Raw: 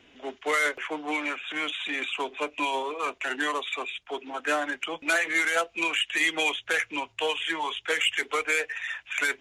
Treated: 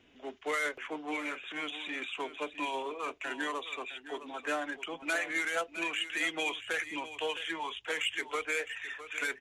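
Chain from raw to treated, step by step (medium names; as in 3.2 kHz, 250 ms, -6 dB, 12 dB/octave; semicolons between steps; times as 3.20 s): bass shelf 400 Hz +4.5 dB; on a send: delay 660 ms -13 dB; on the sum: trim -8 dB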